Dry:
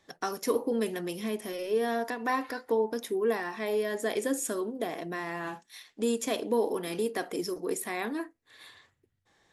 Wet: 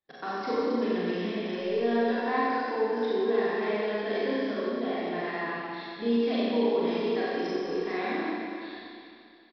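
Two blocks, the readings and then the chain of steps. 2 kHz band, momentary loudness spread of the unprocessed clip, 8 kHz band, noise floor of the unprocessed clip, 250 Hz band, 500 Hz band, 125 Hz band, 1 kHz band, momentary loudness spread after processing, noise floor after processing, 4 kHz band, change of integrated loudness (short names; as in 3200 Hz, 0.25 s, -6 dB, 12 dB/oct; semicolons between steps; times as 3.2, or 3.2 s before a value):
+3.0 dB, 7 LU, under -20 dB, -74 dBFS, +4.5 dB, +2.5 dB, +3.0 dB, +3.5 dB, 9 LU, -51 dBFS, +2.0 dB, +2.5 dB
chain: gate -54 dBFS, range -22 dB; in parallel at -1.5 dB: compressor, threshold -35 dBFS, peak gain reduction 12.5 dB; on the sum: Schroeder reverb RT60 2.5 s, combs from 30 ms, DRR -8.5 dB; downsampling 11025 Hz; gain -9 dB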